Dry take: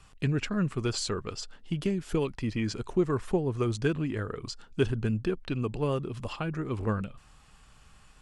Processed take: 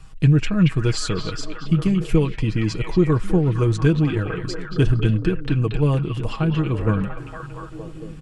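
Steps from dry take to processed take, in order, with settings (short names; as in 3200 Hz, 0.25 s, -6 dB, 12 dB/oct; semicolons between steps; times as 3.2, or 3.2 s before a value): low shelf 190 Hz +11.5 dB; comb 6.3 ms, depth 53%; on a send: delay with a stepping band-pass 0.23 s, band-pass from 2700 Hz, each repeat -0.7 oct, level 0 dB; on the sum: gain +3.5 dB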